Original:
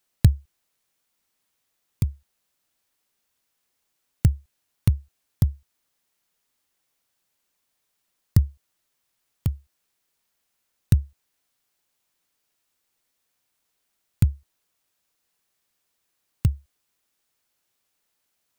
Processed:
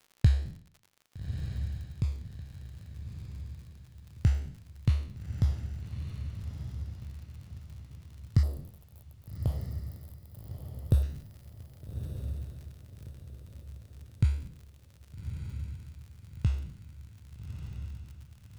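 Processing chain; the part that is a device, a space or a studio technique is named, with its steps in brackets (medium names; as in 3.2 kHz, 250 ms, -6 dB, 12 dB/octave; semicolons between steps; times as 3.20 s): spectral sustain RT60 0.57 s; lo-fi chain (low-pass 4.8 kHz 12 dB/octave; wow and flutter; crackle 66 per s -37 dBFS); 8.43–11.03 s: FFT filter 190 Hz 0 dB, 580 Hz +13 dB, 2.1 kHz -13 dB, 3.5 kHz -2 dB, 6 kHz -8 dB, 12 kHz +13 dB; echo that smears into a reverb 1235 ms, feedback 42%, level -7 dB; trim -7.5 dB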